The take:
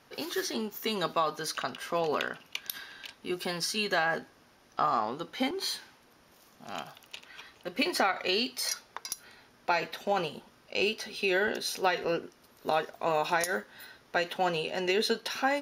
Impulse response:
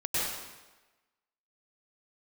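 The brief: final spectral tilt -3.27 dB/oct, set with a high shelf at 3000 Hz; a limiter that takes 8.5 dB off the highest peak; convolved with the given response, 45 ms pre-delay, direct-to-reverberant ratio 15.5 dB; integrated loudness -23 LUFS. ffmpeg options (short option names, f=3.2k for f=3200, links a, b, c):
-filter_complex "[0:a]highshelf=f=3k:g=4,alimiter=limit=-19dB:level=0:latency=1,asplit=2[a][b];[1:a]atrim=start_sample=2205,adelay=45[c];[b][c]afir=irnorm=-1:irlink=0,volume=-24.5dB[d];[a][d]amix=inputs=2:normalize=0,volume=8.5dB"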